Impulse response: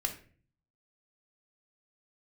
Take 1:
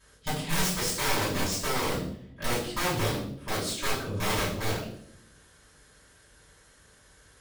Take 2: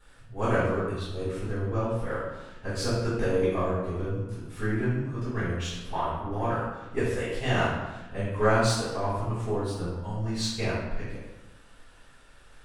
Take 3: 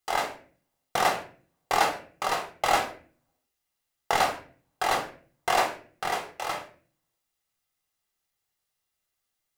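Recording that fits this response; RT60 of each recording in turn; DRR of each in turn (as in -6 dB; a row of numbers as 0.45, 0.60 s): 3; 0.65, 1.1, 0.45 s; -10.0, -15.5, 4.0 dB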